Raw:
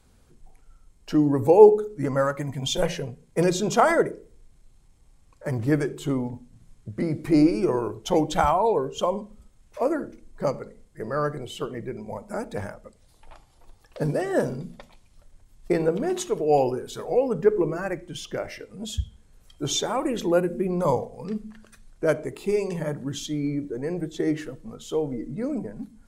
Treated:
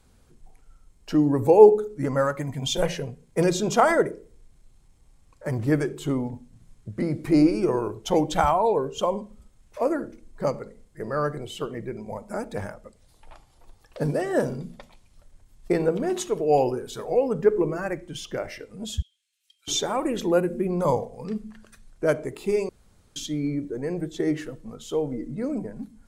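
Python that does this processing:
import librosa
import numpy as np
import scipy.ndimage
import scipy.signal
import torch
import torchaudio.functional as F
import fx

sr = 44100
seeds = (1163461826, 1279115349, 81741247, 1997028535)

y = fx.ladder_highpass(x, sr, hz=2400.0, resonance_pct=45, at=(19.02, 19.68))
y = fx.edit(y, sr, fx.room_tone_fill(start_s=22.69, length_s=0.47), tone=tone)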